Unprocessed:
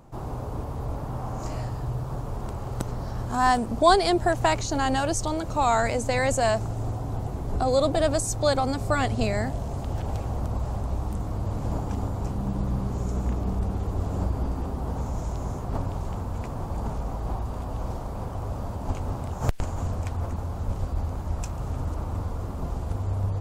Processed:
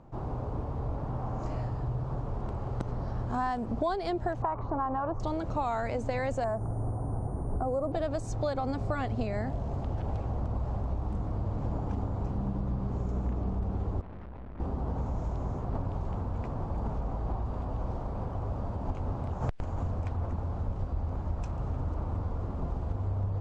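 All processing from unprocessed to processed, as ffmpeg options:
-filter_complex "[0:a]asettb=1/sr,asplit=3[s0][s1][s2];[s0]atrim=end=4.424[s3];[s1]atrim=start=4.42:end=5.2,asetpts=PTS-STARTPTS,afade=t=in:d=0.004:c=qsin,afade=t=out:st=0.776:d=0.004:c=qsin,lowpass=f=1100:t=q:w=4.9,acompressor=threshold=0.0501:ratio=1.5:attack=3.2:release=140:knee=1:detection=peak[s4];[s2]atrim=start=5.196[s5];[s3][s4]acrossfade=d=0.004:c1=hsin:c2=qsin[s6];[s6][s5]acrossfade=d=0.004:c1=qsin:c2=hsin,asettb=1/sr,asplit=3[s7][s8][s9];[s7]atrim=end=6.444[s10];[s8]atrim=start=6.44:end=7.92,asetpts=PTS-STARTPTS,afade=t=in:d=0.004:c=qsin,afade=t=out:st=1.476:d=0.004:c=qsin,asuperstop=centerf=3400:order=4:qfactor=0.57,aeval=exprs='val(0)+0.00794*sin(2*PI*9300*n/s)':c=same[s11];[s9]atrim=start=7.916[s12];[s10][s11]acrossfade=d=0.004:c1=hsin:c2=qsin[s13];[s13][s12]acrossfade=d=0.004:c1=qsin:c2=hsin,asettb=1/sr,asplit=3[s14][s15][s16];[s14]atrim=end=14.014[s17];[s15]atrim=start=14.01:end=14.6,asetpts=PTS-STARTPTS,afade=t=in:d=0.004:c=qsin,afade=t=out:st=0.586:d=0.004:c=qsin,lowpass=2900,bandreject=f=50:t=h:w=6,bandreject=f=100:t=h:w=6,bandreject=f=150:t=h:w=6,bandreject=f=200:t=h:w=6,bandreject=f=250:t=h:w=6,bandreject=f=300:t=h:w=6,bandreject=f=350:t=h:w=6,bandreject=f=400:t=h:w=6,bandreject=f=450:t=h:w=6,bandreject=f=500:t=h:w=6,aeval=exprs='(tanh(112*val(0)+0.65)-tanh(0.65))/112':c=same[s18];[s16]atrim=start=14.596[s19];[s17][s18]acrossfade=d=0.004:c1=hsin:c2=qsin[s20];[s20][s19]acrossfade=d=0.004:c1=qsin:c2=hsin,lowpass=5500,highshelf=f=2300:g=-10,acompressor=threshold=0.0562:ratio=10,volume=0.841"

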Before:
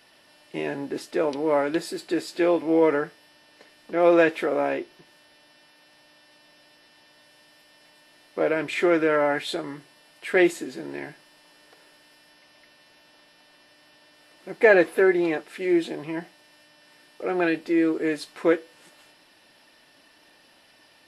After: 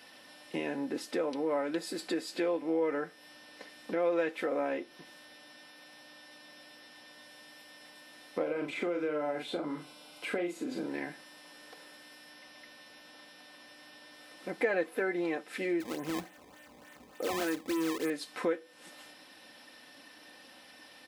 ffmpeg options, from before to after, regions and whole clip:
-filter_complex "[0:a]asettb=1/sr,asplit=3[s0][s1][s2];[s0]atrim=end=8.424[s3];[s1]atrim=start=8.42:end=10.89,asetpts=PTS-STARTPTS,afade=t=in:d=0.004:c=qsin,afade=t=out:st=2.466:d=0.004:c=qsin,bandreject=f=1800:w=6.3,asplit=2[s4][s5];[s5]adelay=40,volume=0.531[s6];[s4][s6]amix=inputs=2:normalize=0,atrim=end_sample=108927,acrossover=split=810|2500[s7][s8][s9];[s7]acompressor=threshold=0.0631:ratio=4[s10];[s8]acompressor=threshold=0.0112:ratio=4[s11];[s9]acompressor=threshold=0.00398:ratio=4[s12];[s10][s11][s12]amix=inputs=3:normalize=0[s13];[s2]atrim=start=10.886[s14];[s3][s13]acrossfade=d=0.004:c1=hsin:c2=qsin[s15];[s15][s14]acrossfade=d=0.004:c1=qsin:c2=hsin,asettb=1/sr,asplit=3[s16][s17][s18];[s16]atrim=end=15.804[s19];[s17]atrim=start=15.8:end=18.1,asetpts=PTS-STARTPTS,afade=t=in:d=0.004:c=qsin,afade=t=out:st=2.296:d=0.004:c=qsin,lowpass=f=3100:w=0.5412,lowpass=f=3100:w=1.3066,acrusher=samples=18:mix=1:aa=0.000001:lfo=1:lforange=28.8:lforate=3.4,asoftclip=type=hard:threshold=0.0944[s20];[s18]atrim=start=18.096[s21];[s19][s20]acrossfade=d=0.004:c1=hsin:c2=qsin[s22];[s22][s21]acrossfade=d=0.004:c1=qsin:c2=hsin,aecho=1:1:3.9:0.45,acompressor=threshold=0.0158:ratio=2.5,highpass=76,volume=1.19"

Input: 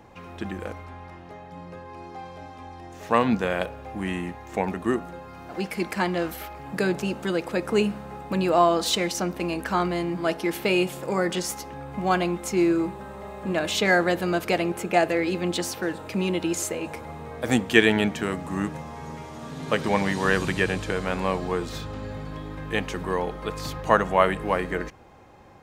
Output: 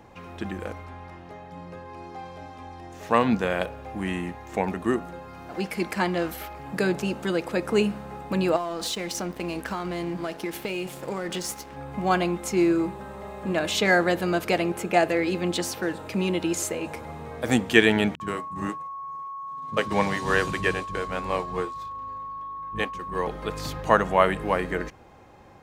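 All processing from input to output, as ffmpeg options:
-filter_complex "[0:a]asettb=1/sr,asplit=3[s0][s1][s2];[s0]atrim=end=8.564[s3];[s1]atrim=start=8.56:end=11.77,asetpts=PTS-STARTPTS,afade=t=in:d=0.004:c=qsin,afade=t=out:st=3.206:d=0.004:c=qsin,acompressor=threshold=0.0631:ratio=12:attack=3.2:release=140:knee=1:detection=peak,aeval=exprs='sgn(val(0))*max(abs(val(0))-0.00596,0)':c=same[s4];[s2]atrim=start=11.766[s5];[s3][s4]acrossfade=d=0.004:c1=hsin:c2=qsin[s6];[s6][s5]acrossfade=d=0.004:c1=qsin:c2=hsin,asettb=1/sr,asplit=3[s7][s8][s9];[s7]atrim=end=18.154[s10];[s8]atrim=start=18.15:end=23.27,asetpts=PTS-STARTPTS,afade=t=in:d=0.004:c=qsin,afade=t=out:st=5.116:d=0.004:c=qsin,agate=range=0.0224:threshold=0.0631:ratio=3:release=100:detection=peak,aeval=exprs='val(0)+0.0224*sin(2*PI*1100*n/s)':c=same,acrossover=split=220[s11][s12];[s12]adelay=50[s13];[s11][s13]amix=inputs=2:normalize=0,atrim=end_sample=225792[s14];[s9]atrim=start=23.266[s15];[s10][s14]acrossfade=d=0.004:c1=hsin:c2=qsin[s16];[s16][s15]acrossfade=d=0.004:c1=qsin:c2=hsin"

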